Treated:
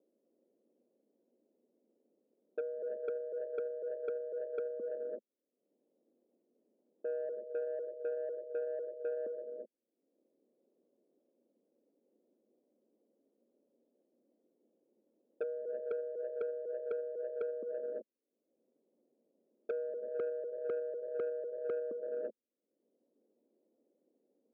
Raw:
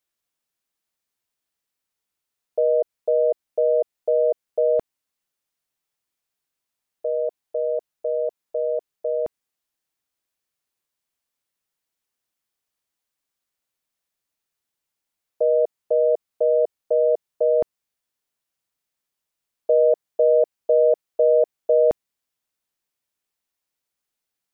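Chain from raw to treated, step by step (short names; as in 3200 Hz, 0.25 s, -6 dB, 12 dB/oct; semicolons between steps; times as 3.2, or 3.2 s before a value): upward compressor, threshold -29 dBFS; Chebyshev band-pass 220–550 Hz, order 3; non-linear reverb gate 0.4 s rising, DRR 2 dB; treble ducked by the level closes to 320 Hz, closed at -20.5 dBFS; soft clip -21.5 dBFS, distortion -15 dB; gain -8 dB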